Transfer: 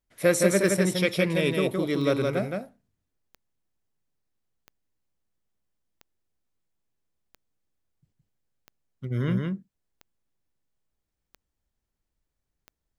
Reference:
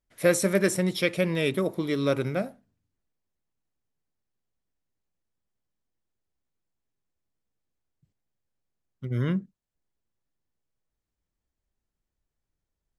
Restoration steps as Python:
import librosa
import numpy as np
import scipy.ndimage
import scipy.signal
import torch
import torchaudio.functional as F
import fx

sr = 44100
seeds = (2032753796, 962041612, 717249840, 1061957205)

y = fx.fix_declick_ar(x, sr, threshold=10.0)
y = fx.fix_echo_inverse(y, sr, delay_ms=167, level_db=-3.5)